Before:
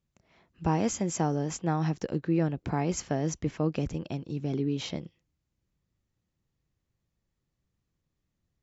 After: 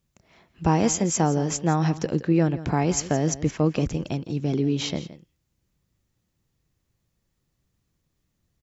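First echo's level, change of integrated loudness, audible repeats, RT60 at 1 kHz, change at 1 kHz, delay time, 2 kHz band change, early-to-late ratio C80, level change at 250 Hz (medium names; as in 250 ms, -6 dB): -15.5 dB, +6.5 dB, 1, no reverb, +6.5 dB, 168 ms, +6.5 dB, no reverb, +6.0 dB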